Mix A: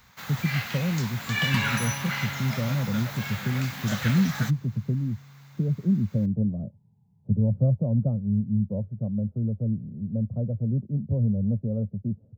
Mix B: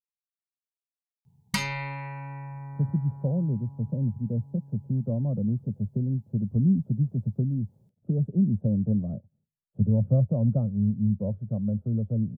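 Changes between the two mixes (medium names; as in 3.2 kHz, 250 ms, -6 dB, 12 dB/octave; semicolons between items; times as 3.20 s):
speech: entry +2.50 s; first sound: muted; master: add treble shelf 2.1 kHz +11.5 dB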